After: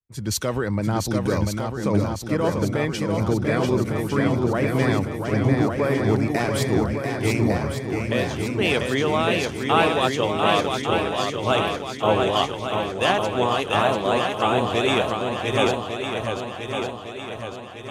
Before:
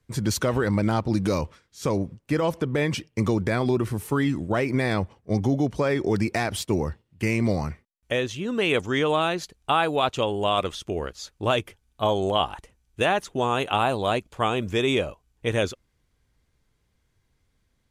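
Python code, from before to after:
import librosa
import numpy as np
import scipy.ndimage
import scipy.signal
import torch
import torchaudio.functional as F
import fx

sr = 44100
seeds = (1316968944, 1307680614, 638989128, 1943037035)

y = fx.echo_swing(x, sr, ms=1155, ratio=1.5, feedback_pct=67, wet_db=-3.5)
y = fx.band_widen(y, sr, depth_pct=70)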